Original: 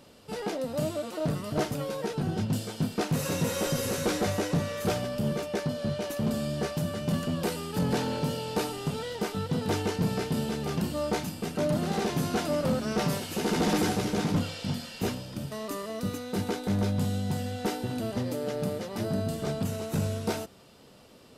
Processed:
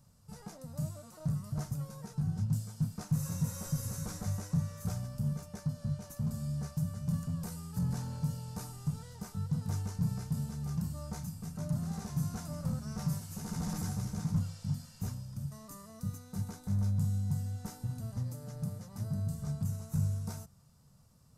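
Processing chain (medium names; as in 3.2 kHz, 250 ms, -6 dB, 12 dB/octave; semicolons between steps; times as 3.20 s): FFT filter 150 Hz 0 dB, 340 Hz -26 dB, 1.1 kHz -13 dB, 3.1 kHz -25 dB, 6.2 kHz -7 dB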